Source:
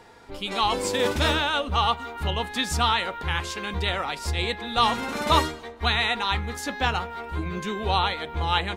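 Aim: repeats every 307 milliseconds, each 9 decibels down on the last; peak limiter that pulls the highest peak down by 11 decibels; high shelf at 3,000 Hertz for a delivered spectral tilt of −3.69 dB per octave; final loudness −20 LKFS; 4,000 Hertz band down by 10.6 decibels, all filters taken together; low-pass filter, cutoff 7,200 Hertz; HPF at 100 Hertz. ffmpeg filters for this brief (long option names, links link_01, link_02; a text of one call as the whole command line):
ffmpeg -i in.wav -af "highpass=100,lowpass=7200,highshelf=frequency=3000:gain=-7.5,equalizer=frequency=4000:width_type=o:gain=-8,alimiter=limit=-20dB:level=0:latency=1,aecho=1:1:307|614|921|1228:0.355|0.124|0.0435|0.0152,volume=10.5dB" out.wav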